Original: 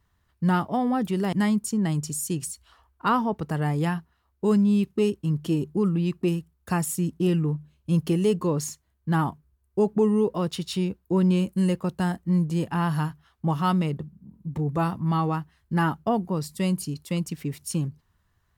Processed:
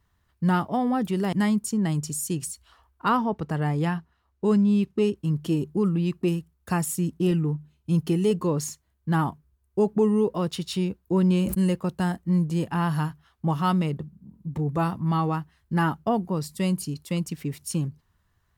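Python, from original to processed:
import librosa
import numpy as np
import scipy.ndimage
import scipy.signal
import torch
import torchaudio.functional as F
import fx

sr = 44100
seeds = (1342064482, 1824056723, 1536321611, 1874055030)

y = fx.high_shelf(x, sr, hz=9400.0, db=-10.5, at=(3.17, 5.17))
y = fx.notch_comb(y, sr, f0_hz=560.0, at=(7.31, 8.31))
y = fx.sustainer(y, sr, db_per_s=63.0, at=(11.03, 11.68))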